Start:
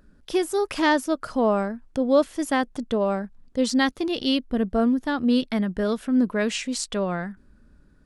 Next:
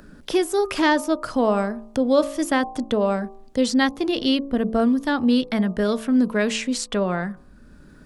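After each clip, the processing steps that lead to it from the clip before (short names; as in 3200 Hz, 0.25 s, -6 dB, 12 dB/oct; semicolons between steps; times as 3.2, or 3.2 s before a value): de-hum 55.55 Hz, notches 22; three-band squash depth 40%; gain +2.5 dB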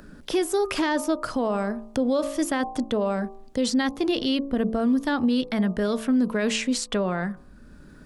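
limiter -15.5 dBFS, peak gain reduction 9 dB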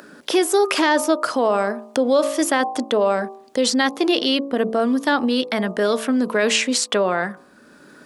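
HPF 360 Hz 12 dB/oct; gain +8.5 dB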